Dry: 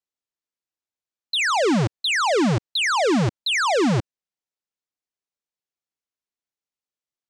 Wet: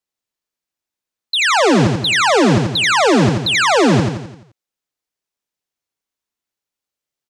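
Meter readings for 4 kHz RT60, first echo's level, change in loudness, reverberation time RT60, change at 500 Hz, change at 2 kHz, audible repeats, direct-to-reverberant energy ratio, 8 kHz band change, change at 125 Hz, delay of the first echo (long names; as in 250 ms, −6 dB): no reverb audible, −4.0 dB, +7.0 dB, no reverb audible, +7.5 dB, +7.5 dB, 6, no reverb audible, +7.0 dB, +7.5 dB, 86 ms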